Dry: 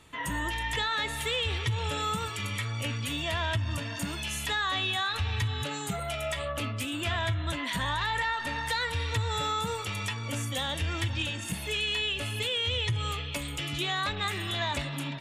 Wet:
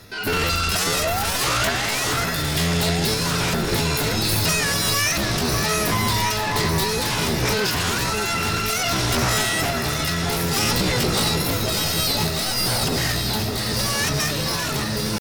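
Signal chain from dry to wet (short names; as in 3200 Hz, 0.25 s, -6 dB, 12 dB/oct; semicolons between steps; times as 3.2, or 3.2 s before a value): octaver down 1 oct, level -3 dB; notch 2000 Hz, Q 6.4; de-hum 119.7 Hz, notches 11; painted sound rise, 0.8–2.15, 290–2000 Hz -34 dBFS; sine folder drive 14 dB, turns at -16 dBFS; random-step tremolo; pitch shift +7 st; echo with dull and thin repeats by turns 0.6 s, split 2000 Hz, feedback 81%, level -5 dB; gain -1.5 dB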